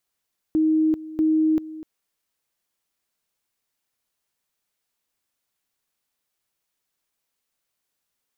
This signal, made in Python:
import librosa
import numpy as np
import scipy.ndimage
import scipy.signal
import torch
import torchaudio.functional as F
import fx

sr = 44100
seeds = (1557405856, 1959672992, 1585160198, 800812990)

y = fx.two_level_tone(sr, hz=314.0, level_db=-16.0, drop_db=17.0, high_s=0.39, low_s=0.25, rounds=2)